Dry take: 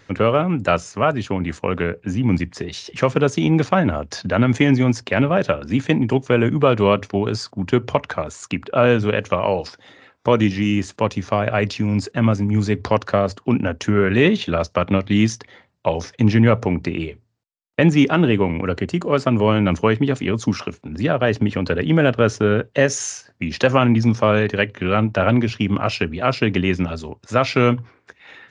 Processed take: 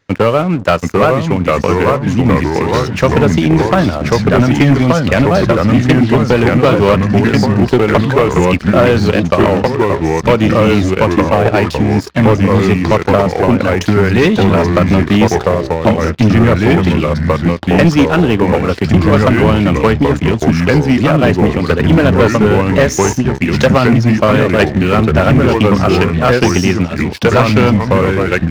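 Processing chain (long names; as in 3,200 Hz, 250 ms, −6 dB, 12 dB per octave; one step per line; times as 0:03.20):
transient designer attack +5 dB, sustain −2 dB
delay with pitch and tempo change per echo 720 ms, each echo −2 semitones, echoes 3
leveller curve on the samples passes 3
level −5 dB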